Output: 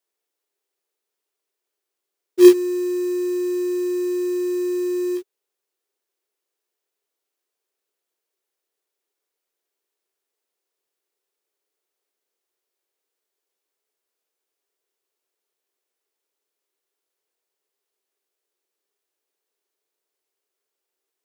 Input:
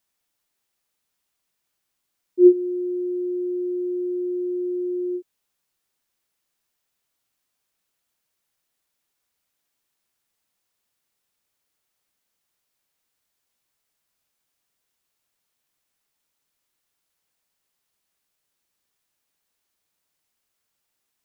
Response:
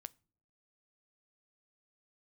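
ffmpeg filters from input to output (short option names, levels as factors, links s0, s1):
-af "highpass=f=400:t=q:w=4.9,acrusher=bits=4:mode=log:mix=0:aa=0.000001,volume=0.501"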